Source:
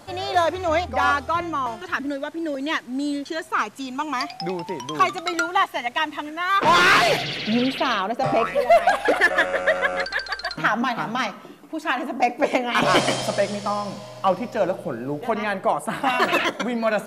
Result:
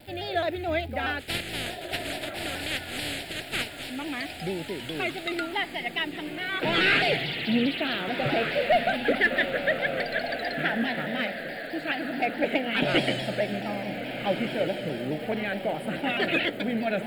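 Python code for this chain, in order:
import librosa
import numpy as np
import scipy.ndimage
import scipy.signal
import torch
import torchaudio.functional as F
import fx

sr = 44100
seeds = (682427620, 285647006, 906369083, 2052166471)

y = fx.spec_flatten(x, sr, power=0.2, at=(1.19, 3.9), fade=0.02)
y = scipy.signal.sosfilt(scipy.signal.butter(2, 6900.0, 'lowpass', fs=sr, output='sos'), y)
y = fx.dmg_crackle(y, sr, seeds[0], per_s=490.0, level_db=-36.0)
y = fx.fixed_phaser(y, sr, hz=2600.0, stages=4)
y = fx.echo_diffused(y, sr, ms=1543, feedback_pct=42, wet_db=-8)
y = fx.vibrato_shape(y, sr, shape='saw_down', rate_hz=4.7, depth_cents=100.0)
y = y * 10.0 ** (-2.0 / 20.0)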